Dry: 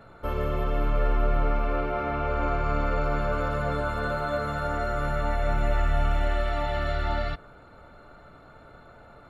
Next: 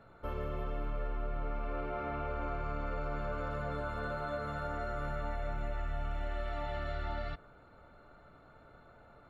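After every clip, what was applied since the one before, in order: high shelf 6100 Hz -7 dB; compressor, threshold -24 dBFS, peak gain reduction 6 dB; gain -8 dB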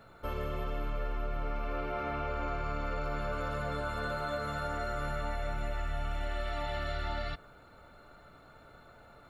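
high shelf 3100 Hz +12 dB; gain +1.5 dB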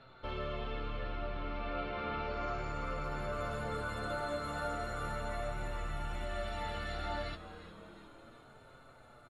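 flange 0.34 Hz, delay 7.5 ms, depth 3.1 ms, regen +40%; low-pass sweep 3800 Hz -> 10000 Hz, 2.11–2.96; on a send: frequency-shifting echo 0.356 s, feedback 59%, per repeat -120 Hz, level -13.5 dB; on the sum: gain +1 dB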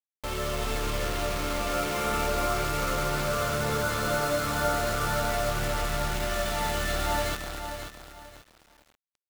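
bit-crush 7-bit; AGC gain up to 3 dB; lo-fi delay 0.535 s, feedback 35%, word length 9-bit, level -8 dB; gain +6 dB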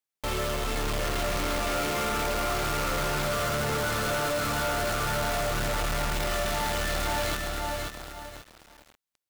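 hard clip -31.5 dBFS, distortion -7 dB; gain +5.5 dB

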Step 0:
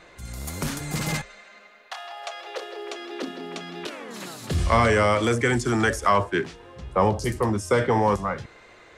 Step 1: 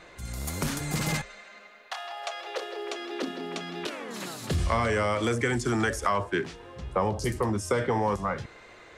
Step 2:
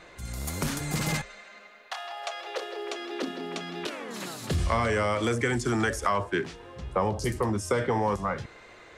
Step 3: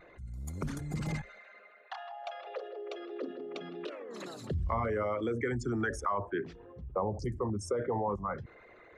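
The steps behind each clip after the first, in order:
compressor 3:1, threshold -24 dBFS, peak gain reduction 7.5 dB
nothing audible
formant sharpening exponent 2; gain -6 dB

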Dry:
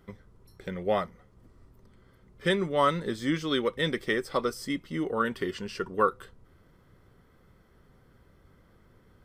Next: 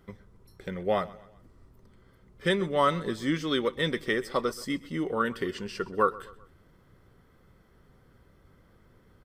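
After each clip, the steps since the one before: feedback echo 0.128 s, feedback 44%, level -20 dB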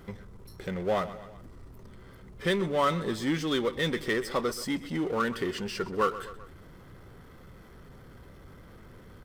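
power-law curve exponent 0.7; gain -4.5 dB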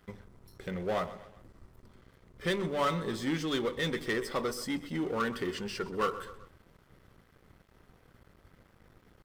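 sample leveller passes 1; de-hum 48.96 Hz, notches 23; crossover distortion -49.5 dBFS; gain -5.5 dB

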